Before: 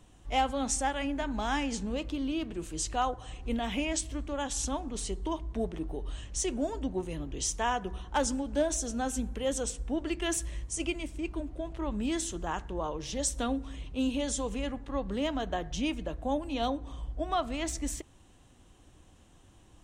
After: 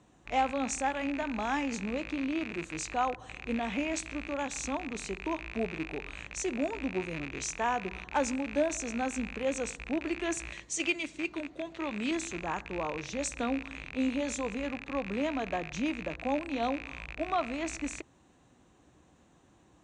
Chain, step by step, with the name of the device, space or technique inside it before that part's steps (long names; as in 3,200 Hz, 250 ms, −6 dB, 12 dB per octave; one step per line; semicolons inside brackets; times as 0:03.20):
0:10.52–0:12.11: meter weighting curve D
car door speaker with a rattle (loose part that buzzes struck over −43 dBFS, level −25 dBFS; loudspeaker in its box 92–7,100 Hz, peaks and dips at 93 Hz −9 dB, 3,100 Hz −9 dB, 5,200 Hz −7 dB)